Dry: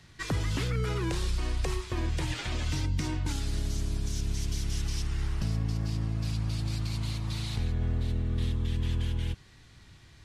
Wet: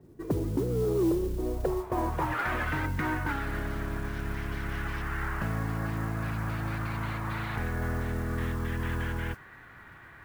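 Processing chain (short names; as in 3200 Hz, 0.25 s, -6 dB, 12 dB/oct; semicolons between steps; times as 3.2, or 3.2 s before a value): low-pass sweep 370 Hz -> 1600 Hz, 1.33–2.52; overdrive pedal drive 17 dB, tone 1700 Hz, clips at -16.5 dBFS; modulation noise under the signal 24 dB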